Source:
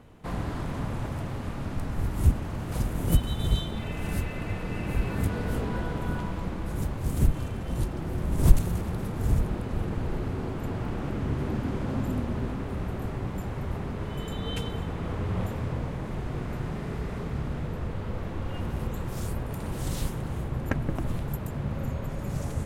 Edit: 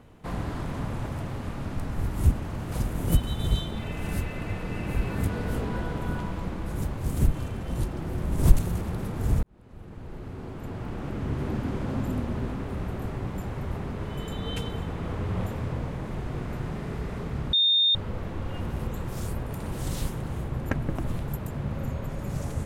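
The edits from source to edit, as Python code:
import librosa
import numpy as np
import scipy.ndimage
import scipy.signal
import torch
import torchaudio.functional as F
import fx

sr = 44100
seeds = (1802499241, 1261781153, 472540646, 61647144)

y = fx.edit(x, sr, fx.fade_in_span(start_s=9.43, length_s=2.06),
    fx.bleep(start_s=17.53, length_s=0.42, hz=3650.0, db=-18.0), tone=tone)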